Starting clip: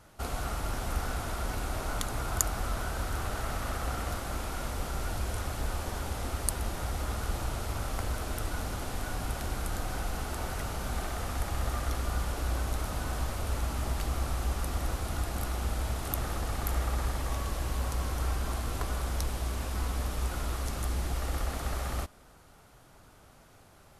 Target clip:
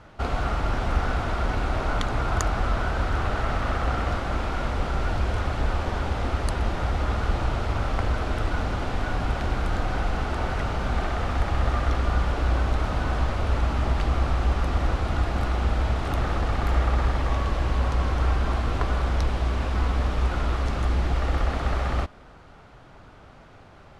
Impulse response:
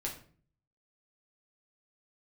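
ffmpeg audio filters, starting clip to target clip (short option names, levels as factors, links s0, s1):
-af "lowpass=3300,volume=2.66"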